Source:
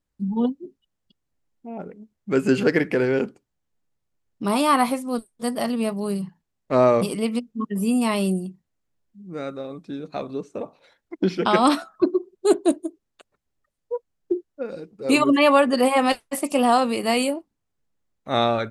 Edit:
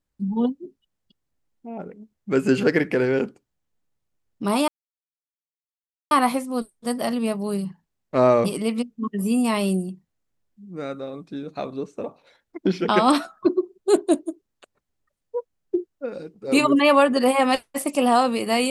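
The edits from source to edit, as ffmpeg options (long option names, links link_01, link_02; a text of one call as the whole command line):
ffmpeg -i in.wav -filter_complex "[0:a]asplit=2[link_01][link_02];[link_01]atrim=end=4.68,asetpts=PTS-STARTPTS,afade=type=out:start_time=4.676:duration=0.004:curve=hsin,apad=pad_dur=1.43[link_03];[link_02]atrim=start=4.68,asetpts=PTS-STARTPTS,afade=type=in:duration=0.004:curve=hsin[link_04];[link_03][link_04]concat=n=2:v=0:a=1" out.wav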